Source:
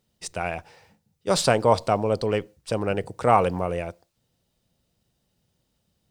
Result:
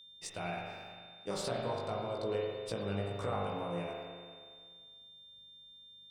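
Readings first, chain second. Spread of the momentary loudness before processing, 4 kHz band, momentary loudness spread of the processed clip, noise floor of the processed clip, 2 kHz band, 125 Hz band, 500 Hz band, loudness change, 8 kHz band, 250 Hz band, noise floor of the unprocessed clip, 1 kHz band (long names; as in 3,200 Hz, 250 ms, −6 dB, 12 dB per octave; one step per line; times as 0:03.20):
14 LU, −10.0 dB, 17 LU, −56 dBFS, −13.0 dB, −11.5 dB, −13.0 dB, −14.5 dB, −14.5 dB, −12.0 dB, −74 dBFS, −16.0 dB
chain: downward compressor 6 to 1, threshold −28 dBFS, peak gain reduction 15 dB
spring reverb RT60 1.9 s, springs 40 ms, chirp 75 ms, DRR −1.5 dB
chorus effect 1.9 Hz, delay 17 ms, depth 2.5 ms
steady tone 3,600 Hz −48 dBFS
level −5.5 dB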